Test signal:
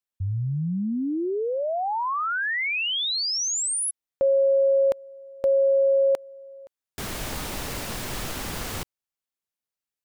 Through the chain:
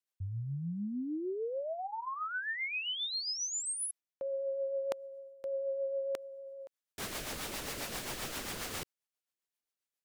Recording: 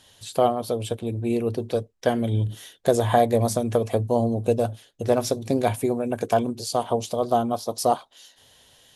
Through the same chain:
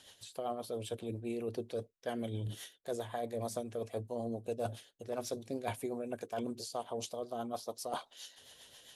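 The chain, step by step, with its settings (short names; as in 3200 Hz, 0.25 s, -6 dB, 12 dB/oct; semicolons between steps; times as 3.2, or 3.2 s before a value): low shelf 220 Hz -11 dB; reverse; compressor 5:1, threshold -35 dBFS; reverse; rotary speaker horn 7.5 Hz; gain +1 dB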